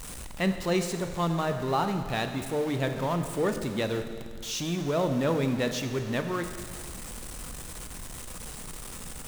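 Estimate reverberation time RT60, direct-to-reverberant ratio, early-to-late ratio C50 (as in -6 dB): 2.0 s, 7.0 dB, 8.0 dB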